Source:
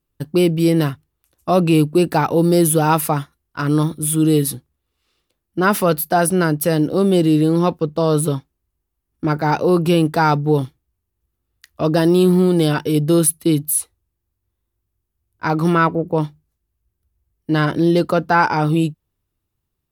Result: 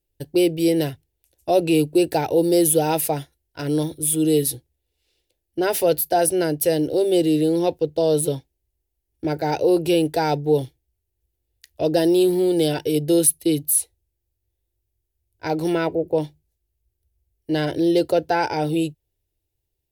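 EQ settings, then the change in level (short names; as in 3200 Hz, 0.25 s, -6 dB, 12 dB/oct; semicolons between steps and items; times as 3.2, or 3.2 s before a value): fixed phaser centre 490 Hz, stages 4; 0.0 dB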